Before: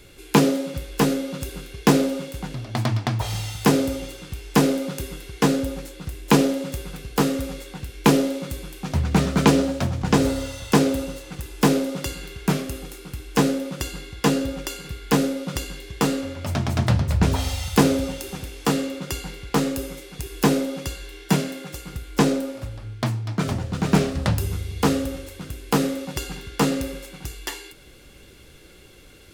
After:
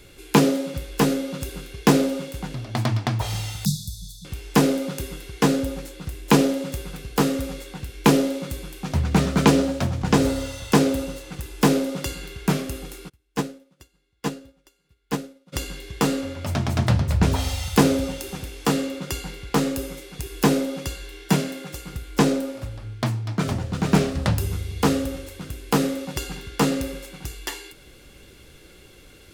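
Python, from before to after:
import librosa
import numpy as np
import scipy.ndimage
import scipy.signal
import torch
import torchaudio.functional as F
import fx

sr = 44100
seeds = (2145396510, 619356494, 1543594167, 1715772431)

y = fx.brickwall_bandstop(x, sr, low_hz=210.0, high_hz=3400.0, at=(3.65, 4.25))
y = fx.upward_expand(y, sr, threshold_db=-33.0, expansion=2.5, at=(13.08, 15.52), fade=0.02)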